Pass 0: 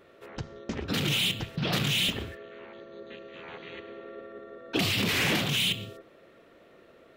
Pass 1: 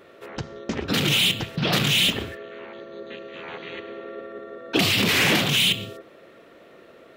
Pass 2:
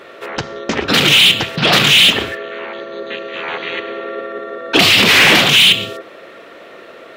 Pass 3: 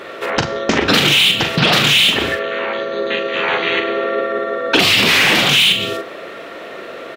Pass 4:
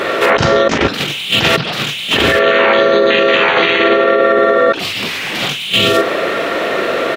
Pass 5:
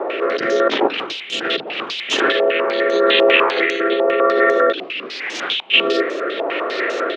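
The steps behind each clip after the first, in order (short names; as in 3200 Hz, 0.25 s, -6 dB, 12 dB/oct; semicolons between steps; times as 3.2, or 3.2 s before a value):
low shelf 81 Hz -10 dB; gain +7 dB
overdrive pedal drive 12 dB, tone 5300 Hz, clips at -8.5 dBFS; gain +8 dB
compressor 12:1, threshold -16 dBFS, peak gain reduction 10 dB; doubler 42 ms -7.5 dB; gain +5.5 dB
negative-ratio compressor -20 dBFS, ratio -0.5; maximiser +11.5 dB; gain -1 dB
rotary speaker horn 0.85 Hz; ladder high-pass 280 Hz, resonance 40%; stepped low-pass 10 Hz 850–6300 Hz; gain +1 dB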